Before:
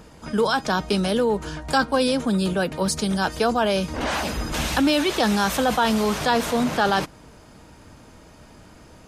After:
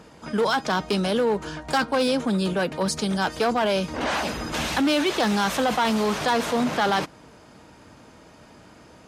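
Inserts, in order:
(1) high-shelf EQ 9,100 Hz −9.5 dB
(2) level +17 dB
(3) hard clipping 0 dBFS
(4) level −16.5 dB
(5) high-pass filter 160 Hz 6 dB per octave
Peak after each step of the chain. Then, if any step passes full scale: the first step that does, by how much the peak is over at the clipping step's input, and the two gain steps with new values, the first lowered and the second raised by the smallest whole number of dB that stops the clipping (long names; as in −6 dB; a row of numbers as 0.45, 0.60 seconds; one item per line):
−7.5, +9.5, 0.0, −16.5, −12.5 dBFS
step 2, 9.5 dB
step 2 +7 dB, step 4 −6.5 dB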